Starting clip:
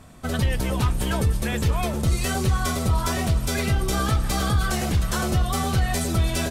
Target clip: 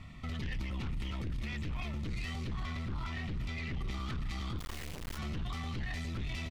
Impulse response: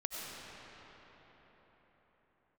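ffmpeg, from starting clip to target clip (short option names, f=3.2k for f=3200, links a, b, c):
-filter_complex "[0:a]firequalizer=gain_entry='entry(110,0);entry(450,-15);entry(1900,3);entry(9000,-22)':delay=0.05:min_phase=1,asettb=1/sr,asplit=3[a][b][c];[a]atrim=end=2.494[d];[b]atrim=start=2.49:end=3.91,asetpts=PTS-STARTPTS,afade=t=in:d=0.004:c=qsin,afade=t=out:st=1.416:d=0.004:c=qsin,acrossover=split=4300[e][f];[f]acompressor=threshold=-53dB:ratio=4:attack=1:release=60[g];[e][g]amix=inputs=2:normalize=0[h];[c]atrim=start=3.906[i];[d][h]acrossfade=d=0.004:c1=hsin:c2=qsin[j];[j][i]acrossfade=d=0.004:c1=qsin:c2=hsin,asuperstop=centerf=1600:order=8:qfactor=4.7,aeval=exprs='0.266*(cos(1*acos(clip(val(0)/0.266,-1,1)))-cos(1*PI/2))+0.0944*(cos(4*acos(clip(val(0)/0.266,-1,1)))-cos(4*PI/2))+0.0841*(cos(5*acos(clip(val(0)/0.266,-1,1)))-cos(5*PI/2))':c=same,alimiter=limit=-23.5dB:level=0:latency=1:release=29,asplit=3[k][l][m];[k]afade=t=out:st=4.58:d=0.02[n];[l]acrusher=bits=3:dc=4:mix=0:aa=0.000001,afade=t=in:st=4.58:d=0.02,afade=t=out:st=5.17:d=0.02[o];[m]afade=t=in:st=5.17:d=0.02[p];[n][o][p]amix=inputs=3:normalize=0,volume=-7.5dB"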